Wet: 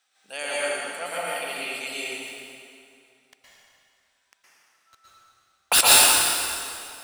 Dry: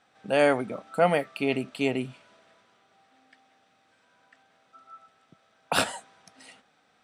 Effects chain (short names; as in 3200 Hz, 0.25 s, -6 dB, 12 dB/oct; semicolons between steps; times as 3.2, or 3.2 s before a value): differentiator; 2.06–5.81 sample leveller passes 5; plate-style reverb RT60 2.5 s, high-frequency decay 0.8×, pre-delay 0.105 s, DRR -8 dB; gain +4.5 dB